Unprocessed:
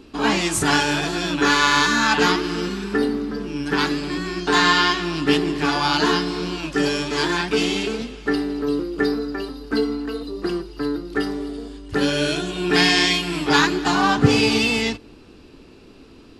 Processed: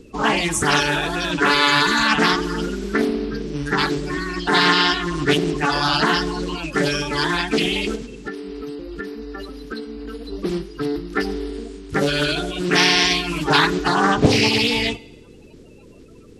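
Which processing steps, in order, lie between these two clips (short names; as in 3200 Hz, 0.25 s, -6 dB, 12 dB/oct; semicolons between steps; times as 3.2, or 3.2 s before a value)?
bin magnitudes rounded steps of 30 dB; 7.95–10.32 compressor 6:1, threshold -30 dBFS, peak gain reduction 13.5 dB; reverb RT60 1.0 s, pre-delay 25 ms, DRR 19 dB; Doppler distortion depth 0.79 ms; gain +1.5 dB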